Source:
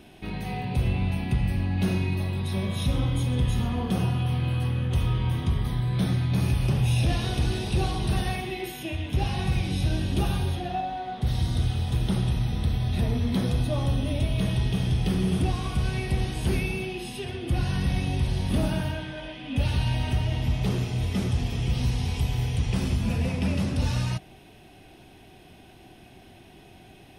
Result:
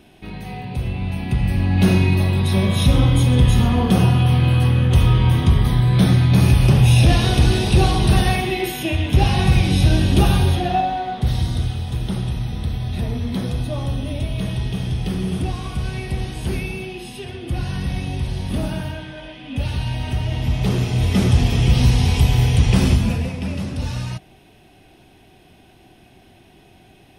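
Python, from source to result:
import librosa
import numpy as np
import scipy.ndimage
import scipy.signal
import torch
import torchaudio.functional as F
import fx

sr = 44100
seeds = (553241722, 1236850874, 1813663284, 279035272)

y = fx.gain(x, sr, db=fx.line((0.94, 0.5), (1.87, 10.5), (10.81, 10.5), (11.82, 1.5), (19.97, 1.5), (21.33, 11.0), (22.91, 11.0), (23.33, 0.5)))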